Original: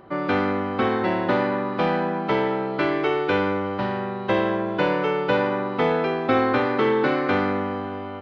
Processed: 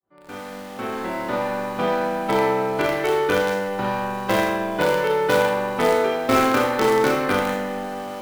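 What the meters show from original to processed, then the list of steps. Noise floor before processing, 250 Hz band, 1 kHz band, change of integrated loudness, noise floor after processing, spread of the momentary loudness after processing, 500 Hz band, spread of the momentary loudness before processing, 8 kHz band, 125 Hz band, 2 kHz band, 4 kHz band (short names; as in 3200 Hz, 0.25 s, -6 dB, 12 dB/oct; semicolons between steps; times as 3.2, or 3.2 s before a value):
-31 dBFS, -2.0 dB, +1.5 dB, +1.5 dB, -36 dBFS, 11 LU, +2.0 dB, 5 LU, n/a, -2.5 dB, +1.5 dB, +3.5 dB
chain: opening faded in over 2.31 s; in parallel at -11.5 dB: companded quantiser 2-bit; on the sum: Schroeder reverb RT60 0.62 s, combs from 26 ms, DRR -0.5 dB; gain -3 dB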